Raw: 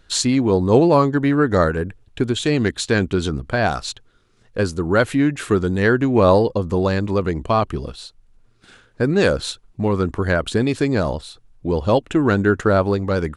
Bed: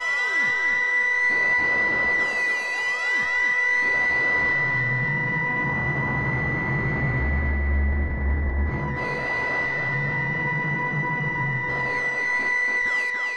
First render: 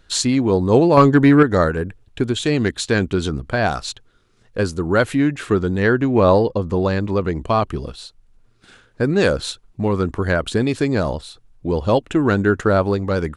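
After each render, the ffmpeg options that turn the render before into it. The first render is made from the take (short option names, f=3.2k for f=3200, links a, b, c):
-filter_complex "[0:a]asettb=1/sr,asplit=3[a][b][c];[a]atrim=end=0.974[d];[b]atrim=start=0.97:end=1.43,asetpts=PTS-STARTPTS,afade=t=in:d=0.004:c=qsin,afade=t=out:st=0.456:d=0.004:c=qsin,acontrast=80[e];[c]atrim=start=1.426[f];[d][e]acrossfade=d=0.004:c1=hsin:c2=qsin[g];[g][f]acrossfade=d=0.004:c1=qsin:c2=hsin,asettb=1/sr,asplit=3[h][i][j];[h]atrim=end=5.374[k];[i]atrim=start=5.37:end=7.34,asetpts=PTS-STARTPTS,afade=t=in:d=0.004:c=qsin,afade=t=out:st=1.966:d=0.004:c=qsin,highshelf=f=8.6k:g=-11.5[l];[j]atrim=start=7.336[m];[k][l]acrossfade=d=0.004:c1=hsin:c2=qsin[n];[n][m]acrossfade=d=0.004:c1=qsin:c2=hsin"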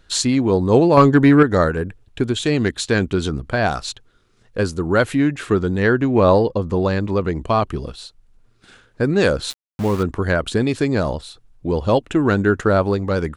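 -filter_complex "[0:a]asettb=1/sr,asplit=3[a][b][c];[a]atrim=end=9.504[d];[b]atrim=start=9.5:end=10.03,asetpts=PTS-STARTPTS,afade=t=in:d=0.004:c=qsin,afade=t=out:st=0.526:d=0.004:c=qsin,aeval=exprs='val(0)*gte(abs(val(0)),0.0398)':c=same[e];[c]atrim=start=10.026[f];[d][e]acrossfade=d=0.004:c1=hsin:c2=qsin[g];[g][f]acrossfade=d=0.004:c1=qsin:c2=hsin"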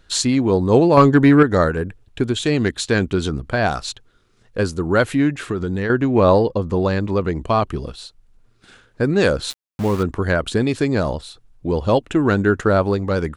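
-filter_complex "[0:a]asettb=1/sr,asplit=3[a][b][c];[a]atrim=end=5.334[d];[b]atrim=start=5.33:end=5.9,asetpts=PTS-STARTPTS,afade=t=in:d=0.004:c=qsin,afade=t=out:st=0.566:d=0.004:c=qsin,acompressor=threshold=-18dB:ratio=6:attack=3.2:release=140:knee=1:detection=peak[e];[c]atrim=start=5.896[f];[d][e]acrossfade=d=0.004:c1=hsin:c2=qsin[g];[g][f]acrossfade=d=0.004:c1=qsin:c2=hsin"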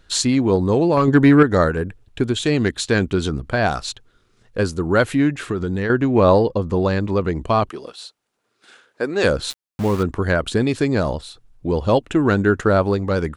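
-filter_complex "[0:a]asettb=1/sr,asplit=3[a][b][c];[a]atrim=end=0.554[d];[b]atrim=start=0.55:end=1.08,asetpts=PTS-STARTPTS,afade=t=in:d=0.004:c=qsin,afade=t=out:st=0.526:d=0.004:c=qsin,acompressor=threshold=-12dB:ratio=6:attack=3.2:release=140:knee=1:detection=peak[e];[c]atrim=start=1.076[f];[d][e]acrossfade=d=0.004:c1=hsin:c2=qsin[g];[g][f]acrossfade=d=0.004:c1=qsin:c2=hsin,asettb=1/sr,asplit=3[h][i][j];[h]atrim=end=7.694[k];[i]atrim=start=7.69:end=9.24,asetpts=PTS-STARTPTS,afade=t=in:d=0.004:c=qsin,afade=t=out:st=1.546:d=0.004:c=qsin,highpass=390[l];[j]atrim=start=9.236[m];[k][l]acrossfade=d=0.004:c1=hsin:c2=qsin[n];[n][m]acrossfade=d=0.004:c1=qsin:c2=hsin"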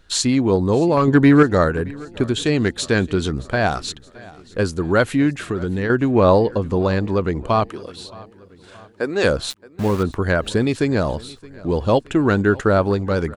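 -af "aecho=1:1:621|1242|1863|2484:0.0794|0.0421|0.0223|0.0118"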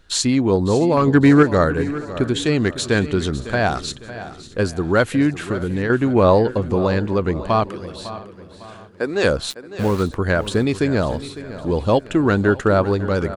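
-af "aecho=1:1:554|1108|1662|2216:0.188|0.0735|0.0287|0.0112"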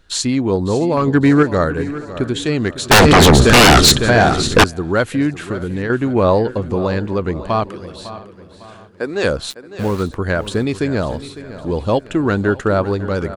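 -filter_complex "[0:a]asettb=1/sr,asplit=3[a][b][c];[a]atrim=end=2.914[d];[b]atrim=start=2.91:end=4.64,asetpts=PTS-STARTPTS,afade=t=in:d=0.004:c=qsin,afade=t=out:st=1.726:d=0.004:c=qsin,aeval=exprs='0.631*sin(PI/2*7.94*val(0)/0.631)':c=same[e];[c]atrim=start=4.636[f];[d][e]acrossfade=d=0.004:c1=hsin:c2=qsin[g];[g][f]acrossfade=d=0.004:c1=qsin:c2=hsin"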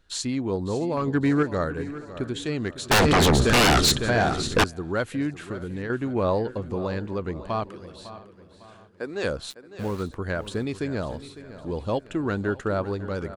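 -af "volume=-10dB"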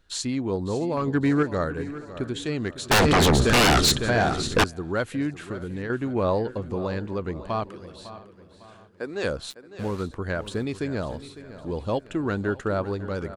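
-filter_complex "[0:a]asettb=1/sr,asplit=3[a][b][c];[a]atrim=end=9.654[d];[b]atrim=start=9.65:end=10.46,asetpts=PTS-STARTPTS,afade=t=in:d=0.004:c=qsin,afade=t=out:st=0.806:d=0.004:c=qsin,lowpass=11k[e];[c]atrim=start=10.456[f];[d][e]acrossfade=d=0.004:c1=hsin:c2=qsin[g];[g][f]acrossfade=d=0.004:c1=qsin:c2=hsin"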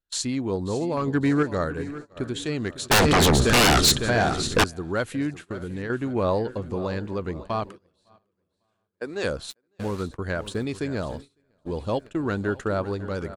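-af "agate=range=-26dB:threshold=-36dB:ratio=16:detection=peak,highshelf=f=5.6k:g=4.5"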